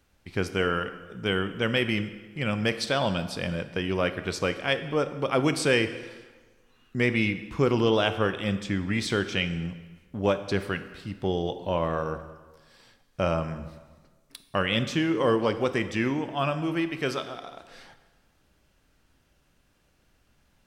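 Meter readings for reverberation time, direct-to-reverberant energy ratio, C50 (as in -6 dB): 1.4 s, 10.5 dB, 12.0 dB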